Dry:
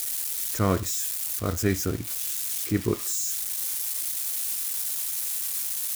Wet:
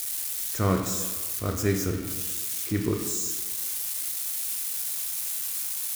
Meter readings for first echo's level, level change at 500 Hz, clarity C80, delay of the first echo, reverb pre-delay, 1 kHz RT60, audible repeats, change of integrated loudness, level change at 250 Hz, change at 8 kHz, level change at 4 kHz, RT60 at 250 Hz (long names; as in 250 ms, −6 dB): no echo audible, −0.5 dB, 8.0 dB, no echo audible, 19 ms, 1.5 s, no echo audible, −1.0 dB, 0.0 dB, −1.5 dB, −1.0 dB, 1.4 s